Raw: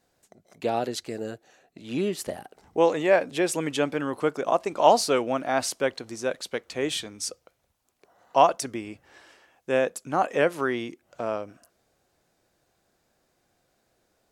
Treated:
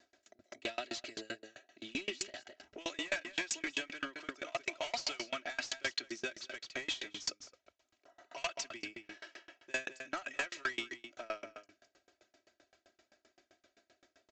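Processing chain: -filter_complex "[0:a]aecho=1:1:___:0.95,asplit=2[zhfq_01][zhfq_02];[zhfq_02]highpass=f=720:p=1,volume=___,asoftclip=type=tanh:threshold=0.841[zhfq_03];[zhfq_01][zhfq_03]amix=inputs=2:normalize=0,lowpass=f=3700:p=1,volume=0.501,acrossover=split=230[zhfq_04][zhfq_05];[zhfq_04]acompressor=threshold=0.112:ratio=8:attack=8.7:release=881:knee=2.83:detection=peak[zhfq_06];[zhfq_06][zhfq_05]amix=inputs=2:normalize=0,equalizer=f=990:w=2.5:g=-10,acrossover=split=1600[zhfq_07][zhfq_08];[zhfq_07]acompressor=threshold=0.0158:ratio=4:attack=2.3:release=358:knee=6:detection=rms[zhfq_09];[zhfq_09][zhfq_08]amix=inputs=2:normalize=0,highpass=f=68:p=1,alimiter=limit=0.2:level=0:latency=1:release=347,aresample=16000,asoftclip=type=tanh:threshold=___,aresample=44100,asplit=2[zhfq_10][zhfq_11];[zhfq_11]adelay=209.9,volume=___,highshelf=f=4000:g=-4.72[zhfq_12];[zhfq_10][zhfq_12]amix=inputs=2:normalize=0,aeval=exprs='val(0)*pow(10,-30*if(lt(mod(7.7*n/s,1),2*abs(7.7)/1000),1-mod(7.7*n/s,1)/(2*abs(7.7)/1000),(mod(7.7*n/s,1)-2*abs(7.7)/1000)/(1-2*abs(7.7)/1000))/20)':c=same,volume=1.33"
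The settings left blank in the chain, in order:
3.1, 4.47, 0.0398, 0.316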